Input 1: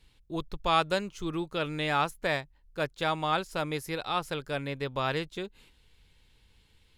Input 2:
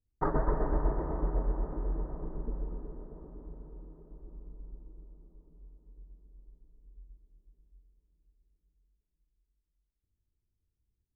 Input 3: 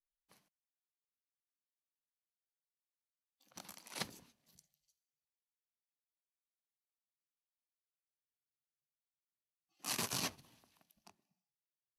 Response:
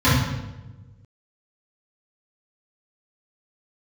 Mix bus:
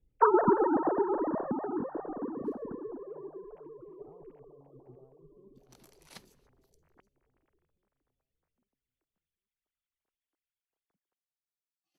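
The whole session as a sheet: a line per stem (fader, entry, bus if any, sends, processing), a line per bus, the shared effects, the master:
-17.0 dB, 0.00 s, no send, echo send -8.5 dB, inverse Chebyshev low-pass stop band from 2000 Hz, stop band 60 dB; negative-ratio compressor -44 dBFS, ratio -1
+1.5 dB, 0.00 s, no send, no echo send, sine-wave speech
-9.0 dB, 2.15 s, no send, no echo send, dry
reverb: off
echo: feedback echo 0.799 s, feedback 37%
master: dry

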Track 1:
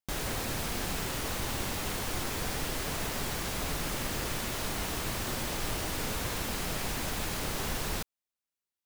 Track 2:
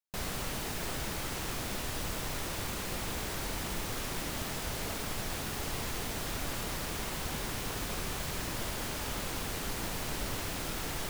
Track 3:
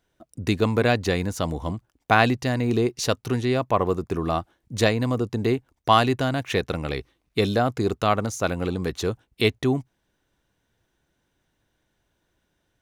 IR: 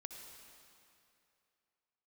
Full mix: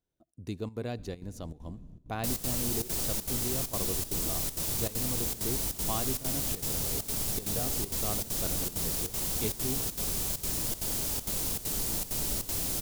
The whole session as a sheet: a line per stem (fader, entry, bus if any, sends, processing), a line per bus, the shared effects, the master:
-10.5 dB, 0.90 s, no send, inverse Chebyshev low-pass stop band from 920 Hz, stop band 60 dB
+1.5 dB, 2.10 s, no send, high shelf 4000 Hz +10.5 dB
-14.0 dB, 0.00 s, send -11 dB, dry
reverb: on, RT60 2.7 s, pre-delay 57 ms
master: bell 1700 Hz -10.5 dB 2.3 oct; step gate "xxxx.xxxx.x" 197 bpm -12 dB

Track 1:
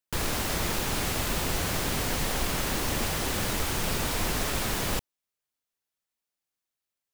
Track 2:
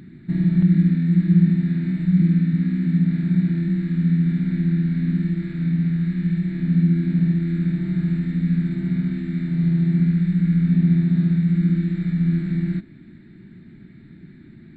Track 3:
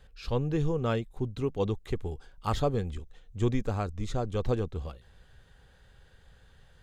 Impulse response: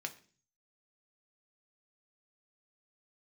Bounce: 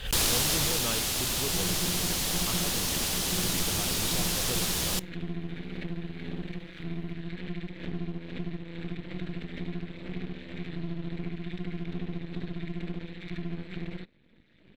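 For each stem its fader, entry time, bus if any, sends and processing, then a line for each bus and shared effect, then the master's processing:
+0.5 dB, 0.00 s, no bus, send -21 dB, band shelf 6300 Hz +9.5 dB 2.5 oct; auto duck -7 dB, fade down 1.00 s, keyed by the third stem
-5.5 dB, 1.25 s, bus A, no send, reverb removal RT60 1.6 s; half-wave rectifier
-6.0 dB, 0.00 s, bus A, no send, dry
bus A: 0.0 dB, bell 3100 Hz +14.5 dB 1.2 oct; compressor, threshold -29 dBFS, peak gain reduction 11 dB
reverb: on, RT60 0.40 s, pre-delay 3 ms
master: backwards sustainer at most 120 dB/s

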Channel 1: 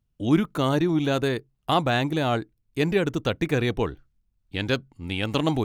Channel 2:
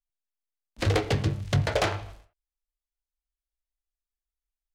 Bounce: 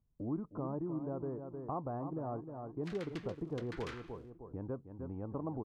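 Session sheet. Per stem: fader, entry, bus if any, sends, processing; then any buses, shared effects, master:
-3.5 dB, 0.00 s, no send, echo send -10.5 dB, Chebyshev low-pass 1100 Hz, order 4
-4.5 dB, 2.05 s, no send, no echo send, steep high-pass 1100 Hz; tilt -2.5 dB/oct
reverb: off
echo: feedback echo 0.309 s, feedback 29%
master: compressor 2:1, threshold -46 dBFS, peak gain reduction 15 dB

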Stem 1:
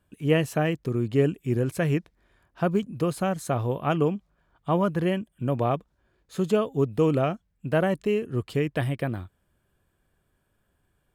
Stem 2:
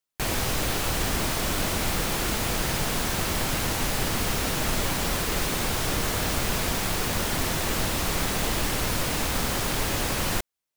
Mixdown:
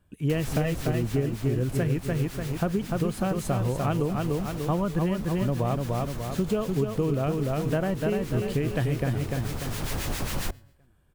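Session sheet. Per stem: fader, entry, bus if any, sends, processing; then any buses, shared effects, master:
0.0 dB, 0.00 s, no send, echo send -5 dB, dry
0.0 dB, 0.10 s, no send, no echo send, resonator 140 Hz, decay 0.8 s, harmonics all, mix 30%; harmonic tremolo 7.4 Hz, depth 70%, crossover 1200 Hz; auto duck -9 dB, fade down 1.50 s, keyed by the first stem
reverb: off
echo: feedback echo 0.295 s, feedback 45%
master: low shelf 170 Hz +8 dB; de-hum 47.26 Hz, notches 2; compressor, threshold -22 dBFS, peak gain reduction 10 dB

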